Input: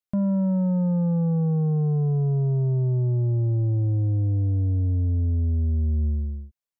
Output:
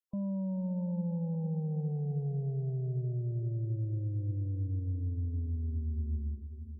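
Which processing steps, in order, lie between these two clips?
spectral gate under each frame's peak -30 dB strong; peak limiter -24 dBFS, peak gain reduction 4 dB; echo that smears into a reverb 505 ms, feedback 41%, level -10.5 dB; trim -8 dB

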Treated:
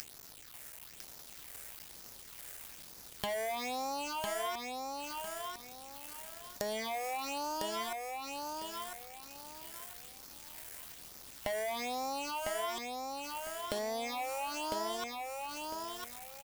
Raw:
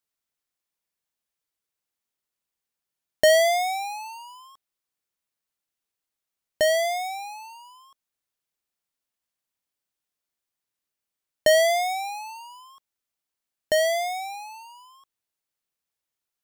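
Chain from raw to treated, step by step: cycle switcher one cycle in 3, muted; upward compressor, threshold -25 dBFS; phase shifter stages 6, 1.1 Hz, lowest notch 250–3000 Hz; waveshaping leveller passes 3; peak limiter -21.5 dBFS, peak gain reduction 11 dB; compression 6:1, threshold -41 dBFS, peak gain reduction 16 dB; hum 50 Hz, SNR 32 dB; feedback delay 1003 ms, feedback 27%, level -3.5 dB; trim +4 dB

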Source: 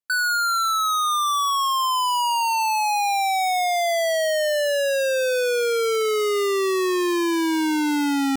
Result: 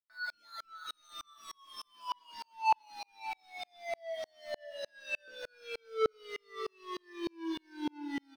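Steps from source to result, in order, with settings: 0.86–1.95 s: treble shelf 2 kHz +6.5 dB; 4.85–5.28 s: high-pass 360 Hz 12 dB/octave; in parallel at +2 dB: gain riding 0.5 s; on the sum: wavefolder -22.5 dBFS; Savitzky-Golay filter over 15 samples; chord resonator A3 sus4, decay 0.38 s; on a send: delay 581 ms -12 dB; on the sum: sawtooth tremolo in dB swelling 3.3 Hz, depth 39 dB; trim +13 dB

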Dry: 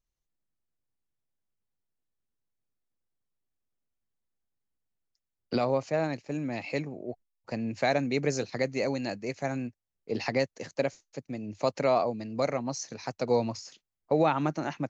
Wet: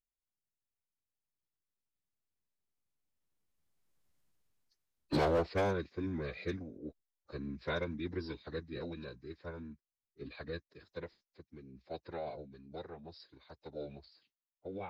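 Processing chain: Doppler pass-by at 4.13 s, 38 m/s, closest 15 m; overload inside the chain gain 33.5 dB; formant-preserving pitch shift -6.5 st; trim +9 dB

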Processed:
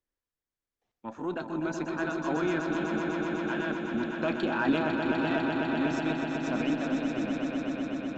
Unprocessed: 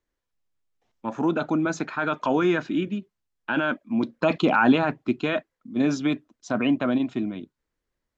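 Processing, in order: pitch shift switched off and on +1 st, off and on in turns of 394 ms; echo with a slow build-up 125 ms, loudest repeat 5, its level -7 dB; Chebyshev shaper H 4 -32 dB, 8 -36 dB, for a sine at -5 dBFS; trim -9 dB

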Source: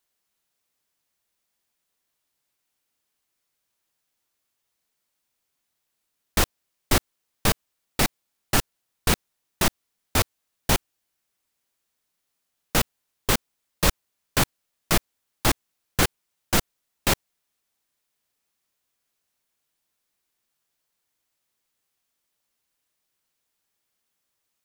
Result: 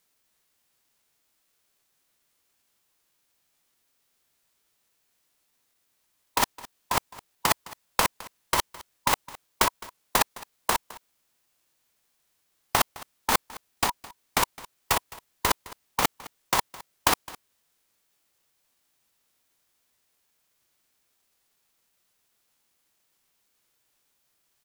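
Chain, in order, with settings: ring modulator 1.3 kHz; formant shift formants -5 st; compressor with a negative ratio -25 dBFS, ratio -0.5; on a send: delay 212 ms -20 dB; on the sum: trim +4.5 dB

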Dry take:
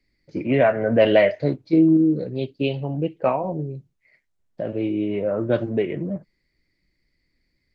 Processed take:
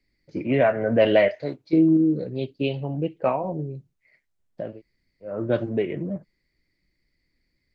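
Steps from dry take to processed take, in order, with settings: 1.28–1.73 s: bass shelf 350 Hz -11 dB; 4.70–5.32 s: room tone, crossfade 0.24 s; trim -2 dB

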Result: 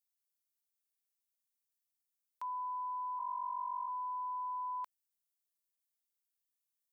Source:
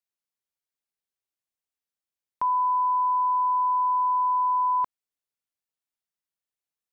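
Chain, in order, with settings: 3.19–3.88 s: formants replaced by sine waves; differentiator; trim +1 dB

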